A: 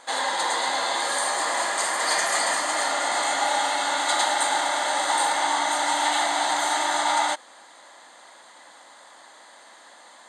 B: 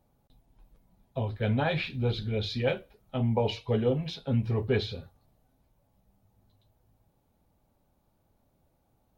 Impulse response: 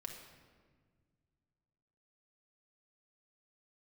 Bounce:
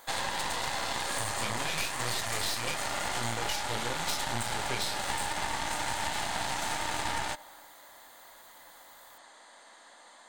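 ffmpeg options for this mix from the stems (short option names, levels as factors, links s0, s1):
-filter_complex "[0:a]volume=0.447,asplit=2[s0][s1];[s1]volume=0.316[s2];[1:a]highshelf=f=1700:t=q:w=1.5:g=13,aexciter=amount=7.5:drive=4.7:freq=5100,flanger=delay=18:depth=7.8:speed=0.92,volume=0.596[s3];[2:a]atrim=start_sample=2205[s4];[s2][s4]afir=irnorm=-1:irlink=0[s5];[s0][s3][s5]amix=inputs=3:normalize=0,aeval=exprs='0.266*(cos(1*acos(clip(val(0)/0.266,-1,1)))-cos(1*PI/2))+0.075*(cos(6*acos(clip(val(0)/0.266,-1,1)))-cos(6*PI/2))':c=same,acompressor=threshold=0.0447:ratio=6"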